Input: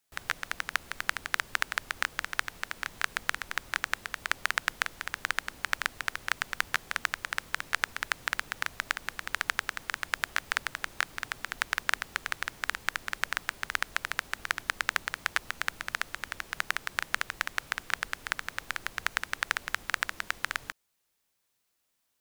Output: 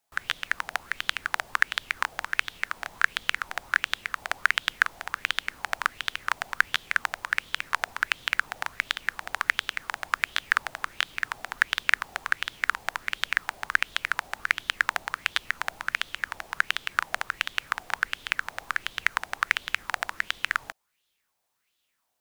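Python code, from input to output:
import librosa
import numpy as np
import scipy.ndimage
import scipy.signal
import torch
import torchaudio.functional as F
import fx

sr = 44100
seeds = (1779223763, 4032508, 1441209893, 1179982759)

y = fx.bell_lfo(x, sr, hz=1.4, low_hz=700.0, high_hz=3500.0, db=14)
y = y * librosa.db_to_amplitude(-2.0)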